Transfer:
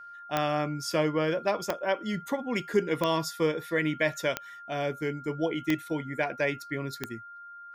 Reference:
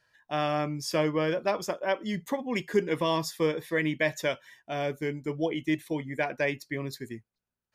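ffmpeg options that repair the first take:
-af "adeclick=t=4,bandreject=f=1400:w=30"

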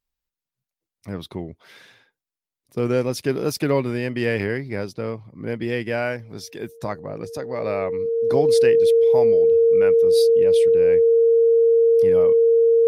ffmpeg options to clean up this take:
-af "bandreject=f=460:w=30"

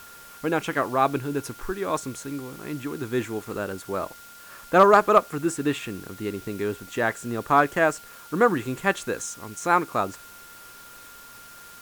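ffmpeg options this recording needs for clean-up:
-af "bandreject=f=1400:w=30,afwtdn=0.004"

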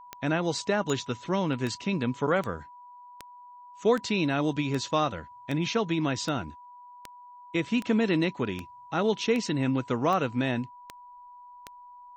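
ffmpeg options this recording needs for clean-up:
-af "adeclick=t=4,bandreject=f=980:w=30"

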